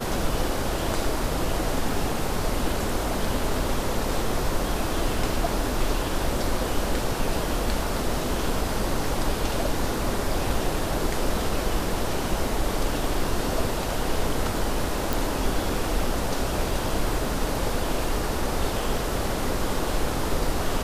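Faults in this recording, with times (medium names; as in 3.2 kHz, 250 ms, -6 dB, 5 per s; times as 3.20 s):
15.13 s: pop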